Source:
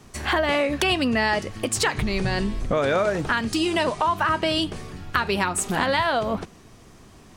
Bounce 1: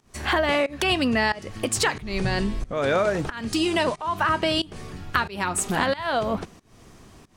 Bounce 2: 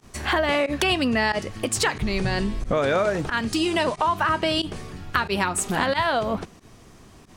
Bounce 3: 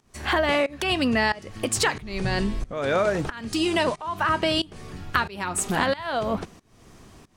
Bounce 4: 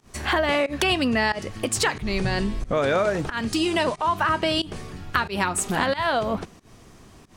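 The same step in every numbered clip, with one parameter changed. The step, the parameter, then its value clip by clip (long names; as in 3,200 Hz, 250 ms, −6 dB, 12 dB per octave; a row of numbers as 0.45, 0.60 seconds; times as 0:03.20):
fake sidechain pumping, release: 309, 63, 454, 146 milliseconds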